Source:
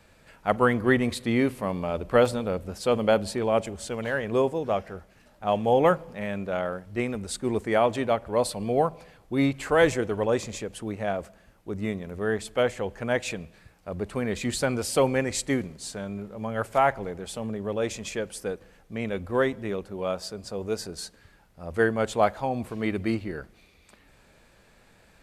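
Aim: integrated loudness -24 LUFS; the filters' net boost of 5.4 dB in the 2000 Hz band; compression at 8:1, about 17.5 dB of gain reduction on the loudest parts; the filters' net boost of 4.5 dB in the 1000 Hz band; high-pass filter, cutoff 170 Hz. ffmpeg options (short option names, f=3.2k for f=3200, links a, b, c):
-af "highpass=170,equalizer=f=1k:t=o:g=5,equalizer=f=2k:t=o:g=5,acompressor=threshold=-31dB:ratio=8,volume=12.5dB"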